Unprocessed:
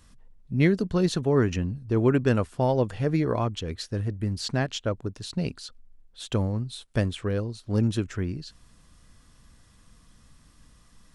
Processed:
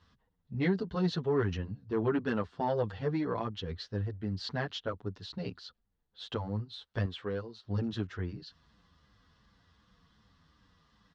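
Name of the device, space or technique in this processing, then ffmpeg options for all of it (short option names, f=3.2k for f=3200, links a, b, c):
barber-pole flanger into a guitar amplifier: -filter_complex "[0:a]asplit=2[a][b];[b]adelay=8.3,afreqshift=-2.7[c];[a][c]amix=inputs=2:normalize=1,asoftclip=type=tanh:threshold=-16dB,highpass=83,equalizer=f=130:t=q:w=4:g=-8,equalizer=f=240:t=q:w=4:g=-6,equalizer=f=340:t=q:w=4:g=-5,equalizer=f=600:t=q:w=4:g=-6,equalizer=f=2.4k:t=q:w=4:g=-8,lowpass=f=4.4k:w=0.5412,lowpass=f=4.4k:w=1.3066,asettb=1/sr,asplit=3[d][e][f];[d]atrim=end=7.064[g];[e]atrim=start=7.06:end=7.63,asetpts=PTS-STARTPTS,afade=t=in:d=0.004:c=qsin,afade=t=out:st=0.566:d=0.004:c=qsin,lowshelf=f=180:g=-11[h];[f]atrim=start=7.626[i];[g][h]acrossfade=d=0.004:c1=hsin:c2=qsin[j];[j][i]acrossfade=d=0.004:c1=qsin:c2=hsin"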